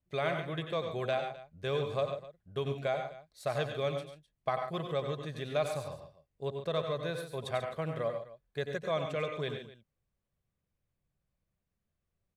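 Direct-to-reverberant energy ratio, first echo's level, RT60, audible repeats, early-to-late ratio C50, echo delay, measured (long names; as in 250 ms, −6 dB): no reverb audible, −9.0 dB, no reverb audible, 3, no reverb audible, 89 ms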